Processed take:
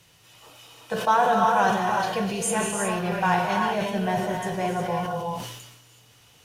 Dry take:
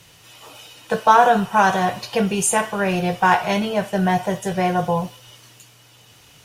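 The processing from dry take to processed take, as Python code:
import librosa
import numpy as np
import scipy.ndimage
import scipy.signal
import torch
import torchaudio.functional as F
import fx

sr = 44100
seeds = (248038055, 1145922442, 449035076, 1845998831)

y = fx.rev_gated(x, sr, seeds[0], gate_ms=390, shape='rising', drr_db=1.5)
y = fx.sustainer(y, sr, db_per_s=50.0)
y = y * librosa.db_to_amplitude(-8.0)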